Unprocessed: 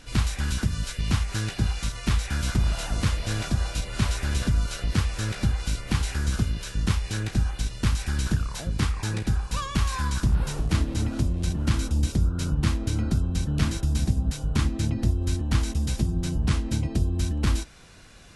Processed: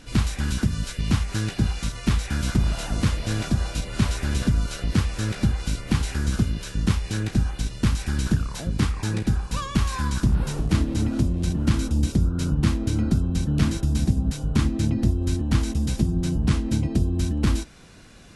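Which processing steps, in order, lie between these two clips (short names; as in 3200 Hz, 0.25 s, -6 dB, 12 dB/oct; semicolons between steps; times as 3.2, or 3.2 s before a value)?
bell 240 Hz +6 dB 1.8 oct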